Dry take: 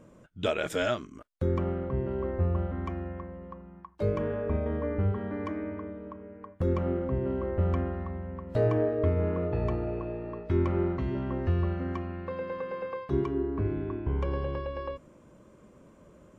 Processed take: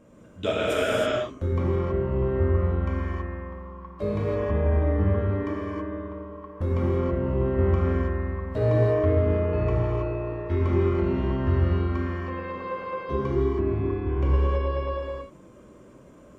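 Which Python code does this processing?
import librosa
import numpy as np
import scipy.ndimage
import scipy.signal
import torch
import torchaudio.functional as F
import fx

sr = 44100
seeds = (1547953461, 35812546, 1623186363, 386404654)

y = fx.rev_gated(x, sr, seeds[0], gate_ms=350, shape='flat', drr_db=-6.5)
y = y * 10.0 ** (-2.0 / 20.0)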